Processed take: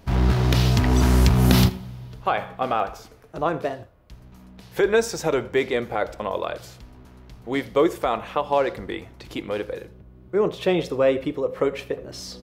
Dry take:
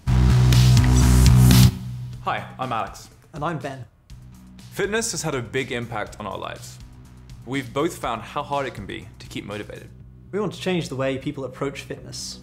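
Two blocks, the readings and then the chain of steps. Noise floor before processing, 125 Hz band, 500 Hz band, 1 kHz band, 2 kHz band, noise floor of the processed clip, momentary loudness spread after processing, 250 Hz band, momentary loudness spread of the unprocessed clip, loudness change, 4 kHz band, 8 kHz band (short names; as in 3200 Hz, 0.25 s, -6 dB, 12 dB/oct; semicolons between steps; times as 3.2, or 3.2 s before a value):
-47 dBFS, -5.0 dB, +6.0 dB, +2.0 dB, 0.0 dB, -48 dBFS, 17 LU, -0.5 dB, 20 LU, -1.5 dB, -2.0 dB, -6.5 dB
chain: graphic EQ 125/500/8000 Hz -7/+8/-9 dB; on a send: echo 81 ms -22.5 dB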